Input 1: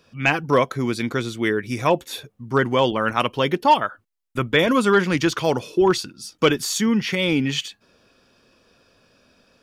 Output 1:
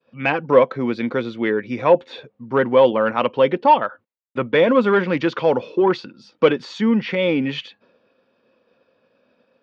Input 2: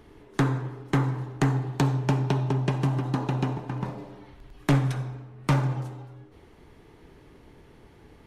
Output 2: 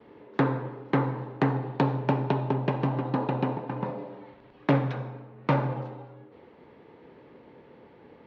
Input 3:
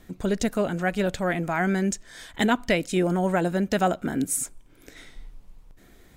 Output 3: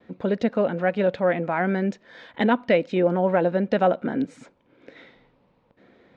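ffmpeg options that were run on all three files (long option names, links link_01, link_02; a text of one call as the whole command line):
ffmpeg -i in.wav -af "acontrast=54,agate=range=-33dB:threshold=-46dB:ratio=3:detection=peak,highpass=150,equalizer=frequency=230:width_type=q:width=4:gain=4,equalizer=frequency=520:width_type=q:width=4:gain=10,equalizer=frequency=910:width_type=q:width=4:gain=4,equalizer=frequency=3200:width_type=q:width=4:gain=-3,lowpass=frequency=3700:width=0.5412,lowpass=frequency=3700:width=1.3066,volume=-6.5dB" out.wav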